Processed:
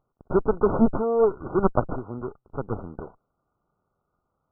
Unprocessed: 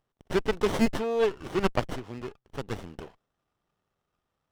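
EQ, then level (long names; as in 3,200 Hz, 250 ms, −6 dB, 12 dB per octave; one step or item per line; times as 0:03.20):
linear-phase brick-wall low-pass 1,500 Hz
+5.0 dB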